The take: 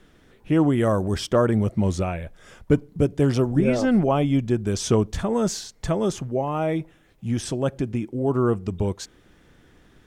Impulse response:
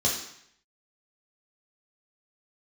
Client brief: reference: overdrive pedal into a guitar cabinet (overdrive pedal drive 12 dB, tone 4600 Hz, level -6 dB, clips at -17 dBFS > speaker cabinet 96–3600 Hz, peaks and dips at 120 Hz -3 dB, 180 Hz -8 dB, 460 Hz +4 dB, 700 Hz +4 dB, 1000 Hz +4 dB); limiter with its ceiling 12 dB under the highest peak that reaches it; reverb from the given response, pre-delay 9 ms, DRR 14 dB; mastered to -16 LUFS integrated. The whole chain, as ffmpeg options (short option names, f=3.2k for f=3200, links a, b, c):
-filter_complex "[0:a]alimiter=limit=-19.5dB:level=0:latency=1,asplit=2[a][b];[1:a]atrim=start_sample=2205,adelay=9[c];[b][c]afir=irnorm=-1:irlink=0,volume=-24.5dB[d];[a][d]amix=inputs=2:normalize=0,asplit=2[e][f];[f]highpass=f=720:p=1,volume=12dB,asoftclip=type=tanh:threshold=-17dB[g];[e][g]amix=inputs=2:normalize=0,lowpass=f=4.6k:p=1,volume=-6dB,highpass=96,equalizer=f=120:t=q:w=4:g=-3,equalizer=f=180:t=q:w=4:g=-8,equalizer=f=460:t=q:w=4:g=4,equalizer=f=700:t=q:w=4:g=4,equalizer=f=1k:t=q:w=4:g=4,lowpass=f=3.6k:w=0.5412,lowpass=f=3.6k:w=1.3066,volume=12dB"